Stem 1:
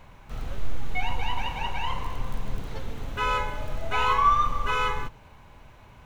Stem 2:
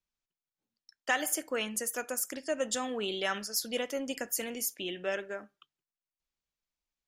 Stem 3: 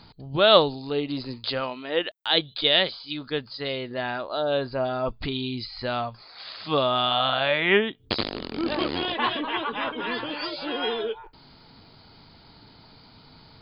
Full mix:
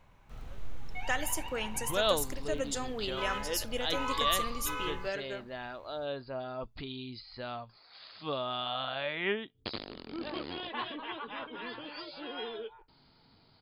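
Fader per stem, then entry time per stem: −11.5, −3.0, −12.0 decibels; 0.00, 0.00, 1.55 seconds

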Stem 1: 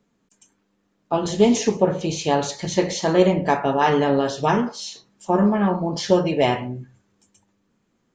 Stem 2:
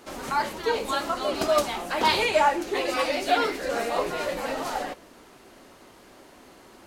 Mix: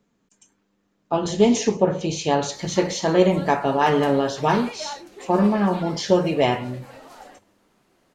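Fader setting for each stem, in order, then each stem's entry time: −0.5, −14.0 decibels; 0.00, 2.45 seconds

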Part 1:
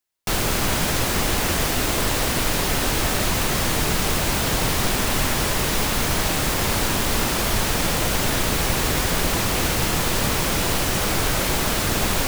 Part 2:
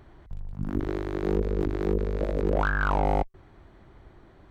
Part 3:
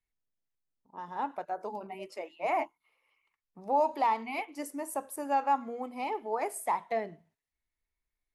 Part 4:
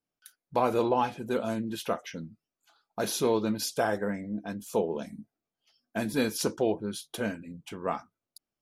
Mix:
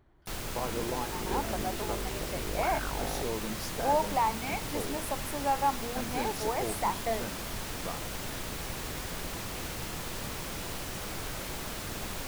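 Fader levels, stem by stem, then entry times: −16.0, −12.5, −0.5, −10.0 decibels; 0.00, 0.00, 0.15, 0.00 seconds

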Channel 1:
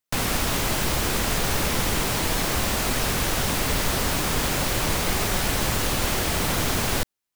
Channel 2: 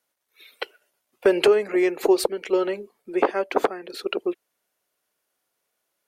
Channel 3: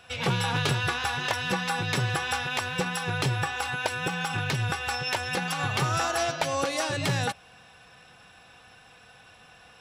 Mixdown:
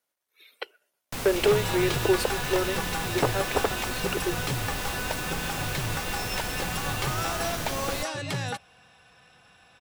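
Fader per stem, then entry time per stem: −9.0, −5.0, −4.0 decibels; 1.00, 0.00, 1.25 seconds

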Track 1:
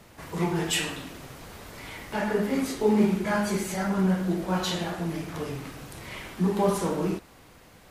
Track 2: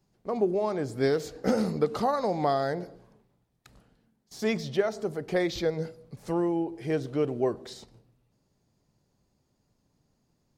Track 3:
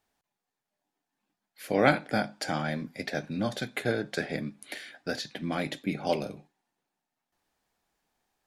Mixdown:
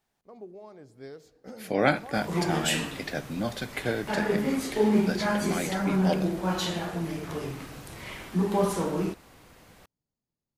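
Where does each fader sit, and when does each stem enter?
−1.0, −18.5, −0.5 decibels; 1.95, 0.00, 0.00 seconds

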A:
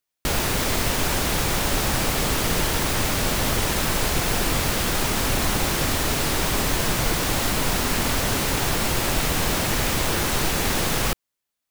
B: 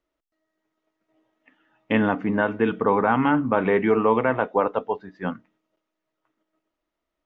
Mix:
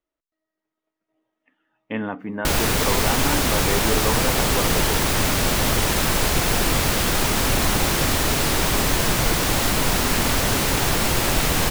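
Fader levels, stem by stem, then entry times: +2.5, −6.5 decibels; 2.20, 0.00 seconds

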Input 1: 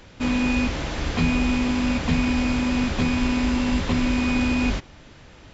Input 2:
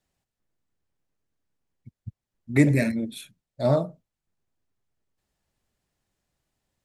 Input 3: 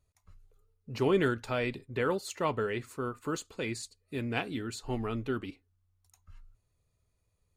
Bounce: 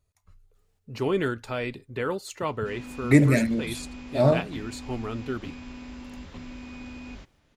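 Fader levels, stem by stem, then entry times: −19.0, +1.5, +1.0 decibels; 2.45, 0.55, 0.00 seconds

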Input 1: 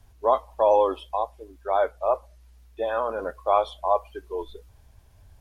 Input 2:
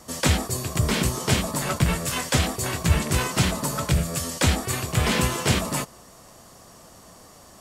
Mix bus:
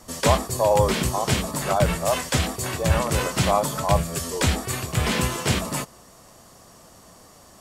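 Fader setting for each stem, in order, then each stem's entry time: −0.5, −1.0 decibels; 0.00, 0.00 seconds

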